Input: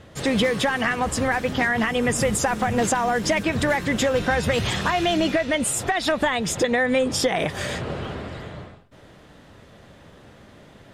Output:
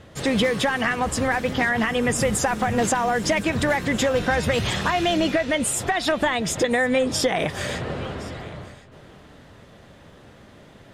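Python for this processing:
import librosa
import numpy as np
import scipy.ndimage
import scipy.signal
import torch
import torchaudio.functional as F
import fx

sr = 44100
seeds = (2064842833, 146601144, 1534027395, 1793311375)

y = x + 10.0 ** (-20.5 / 20.0) * np.pad(x, (int(1065 * sr / 1000.0), 0))[:len(x)]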